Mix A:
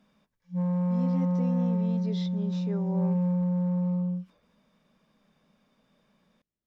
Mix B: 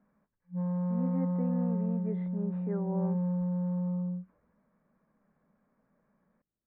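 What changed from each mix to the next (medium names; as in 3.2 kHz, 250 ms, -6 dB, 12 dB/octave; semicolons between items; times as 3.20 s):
background -4.5 dB; master: add steep low-pass 1.9 kHz 36 dB/octave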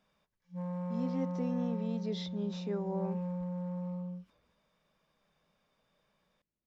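background: add peaking EQ 230 Hz -12.5 dB 0.8 oct; master: remove steep low-pass 1.9 kHz 36 dB/octave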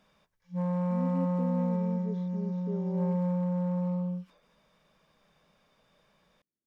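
speech: add band-pass filter 310 Hz, Q 1.2; background +8.0 dB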